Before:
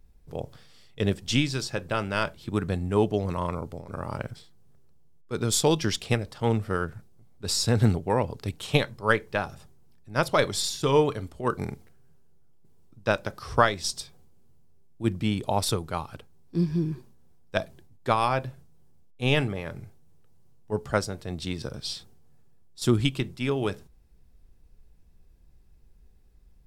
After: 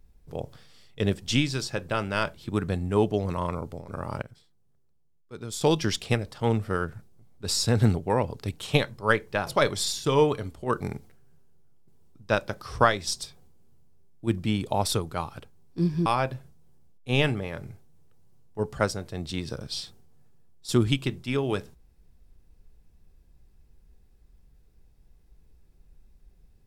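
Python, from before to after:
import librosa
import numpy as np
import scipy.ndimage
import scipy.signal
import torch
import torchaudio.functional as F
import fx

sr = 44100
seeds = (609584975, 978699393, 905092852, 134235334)

y = fx.edit(x, sr, fx.clip_gain(start_s=4.22, length_s=1.39, db=-10.5),
    fx.cut(start_s=9.47, length_s=0.77),
    fx.cut(start_s=16.83, length_s=1.36), tone=tone)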